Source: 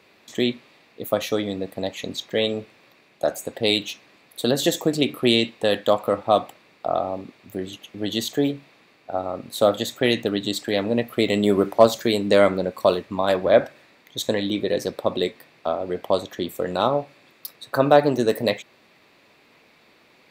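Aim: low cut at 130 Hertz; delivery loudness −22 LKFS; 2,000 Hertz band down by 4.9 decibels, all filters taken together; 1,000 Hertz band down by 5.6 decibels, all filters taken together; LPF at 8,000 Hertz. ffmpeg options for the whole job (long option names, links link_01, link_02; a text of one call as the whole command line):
ffmpeg -i in.wav -af "highpass=130,lowpass=8000,equalizer=frequency=1000:width_type=o:gain=-8,equalizer=frequency=2000:width_type=o:gain=-4,volume=3dB" out.wav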